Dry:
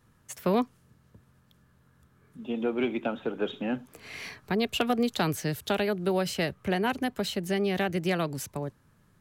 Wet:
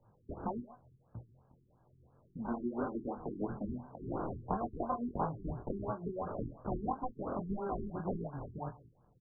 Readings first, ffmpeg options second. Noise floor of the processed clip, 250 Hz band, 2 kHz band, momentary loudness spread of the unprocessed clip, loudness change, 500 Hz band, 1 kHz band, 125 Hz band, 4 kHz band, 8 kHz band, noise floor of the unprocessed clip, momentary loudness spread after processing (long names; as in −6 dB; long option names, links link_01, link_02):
−69 dBFS, −9.5 dB, −22.5 dB, 10 LU, −10.0 dB, −11.0 dB, −5.5 dB, −7.0 dB, below −40 dB, below −40 dB, −64 dBFS, 10 LU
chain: -filter_complex "[0:a]agate=range=-14dB:threshold=-55dB:ratio=16:detection=peak,equalizer=frequency=120:width_type=o:width=0.3:gain=7.5,acrossover=split=4200[link_01][link_02];[link_02]alimiter=level_in=12.5dB:limit=-24dB:level=0:latency=1,volume=-12.5dB[link_03];[link_01][link_03]amix=inputs=2:normalize=0,lowshelf=frequency=600:width_type=q:width=3:gain=-7.5,acompressor=threshold=-52dB:ratio=3,aresample=16000,acrusher=samples=9:mix=1:aa=0.000001,aresample=44100,flanger=delay=17.5:depth=7.3:speed=1.7,asplit=2[link_04][link_05];[link_05]adelay=25,volume=-11dB[link_06];[link_04][link_06]amix=inputs=2:normalize=0,aecho=1:1:137:0.0891,afftfilt=real='re*lt(b*sr/1024,400*pow(1800/400,0.5+0.5*sin(2*PI*2.9*pts/sr)))':imag='im*lt(b*sr/1024,400*pow(1800/400,0.5+0.5*sin(2*PI*2.9*pts/sr)))':win_size=1024:overlap=0.75,volume=16.5dB"